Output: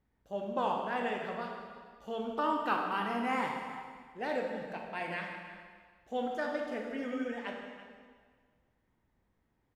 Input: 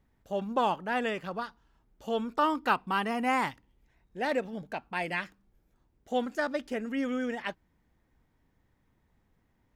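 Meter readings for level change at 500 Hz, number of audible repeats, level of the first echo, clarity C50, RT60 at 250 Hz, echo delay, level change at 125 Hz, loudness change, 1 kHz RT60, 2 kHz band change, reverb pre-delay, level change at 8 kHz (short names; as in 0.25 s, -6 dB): -3.0 dB, 1, -16.5 dB, 2.5 dB, 1.7 s, 0.331 s, -4.5 dB, -4.5 dB, 1.7 s, -4.5 dB, 7 ms, n/a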